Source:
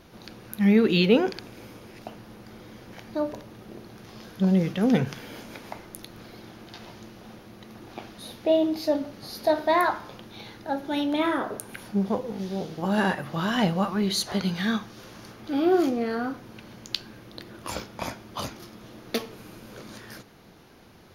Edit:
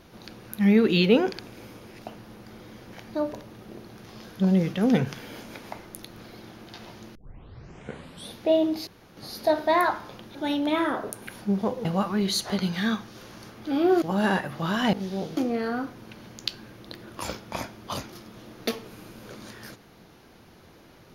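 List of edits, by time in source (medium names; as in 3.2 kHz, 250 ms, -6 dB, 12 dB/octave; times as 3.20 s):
7.15 s: tape start 1.20 s
8.87–9.17 s: room tone
10.35–10.82 s: delete
12.32–12.76 s: swap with 13.67–15.84 s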